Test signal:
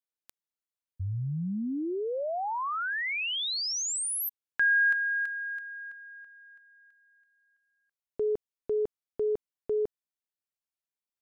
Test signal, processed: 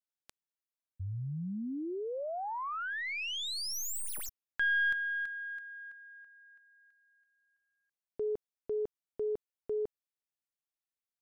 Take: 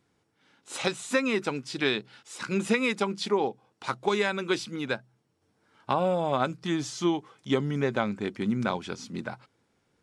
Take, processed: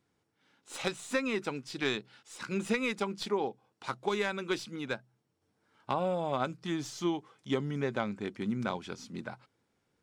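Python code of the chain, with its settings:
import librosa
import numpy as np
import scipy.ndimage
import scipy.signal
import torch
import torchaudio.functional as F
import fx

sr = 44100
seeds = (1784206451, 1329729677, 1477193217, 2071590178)

y = fx.tracing_dist(x, sr, depth_ms=0.033)
y = y * 10.0 ** (-5.5 / 20.0)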